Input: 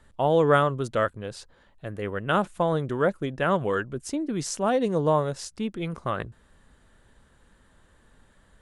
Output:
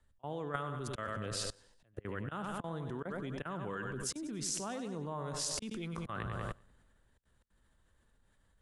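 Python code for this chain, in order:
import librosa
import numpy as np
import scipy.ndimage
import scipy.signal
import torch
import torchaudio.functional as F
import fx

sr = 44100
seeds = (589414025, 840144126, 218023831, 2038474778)

p1 = fx.rider(x, sr, range_db=4, speed_s=0.5)
p2 = fx.high_shelf(p1, sr, hz=4700.0, db=2.5)
p3 = p2 + fx.echo_feedback(p2, sr, ms=96, feedback_pct=51, wet_db=-11, dry=0)
p4 = fx.dynamic_eq(p3, sr, hz=550.0, q=1.8, threshold_db=-37.0, ratio=4.0, max_db=-7)
p5 = fx.auto_swell(p4, sr, attack_ms=390.0)
p6 = fx.level_steps(p5, sr, step_db=23)
p7 = fx.band_widen(p6, sr, depth_pct=40)
y = F.gain(torch.from_numpy(p7), 6.5).numpy()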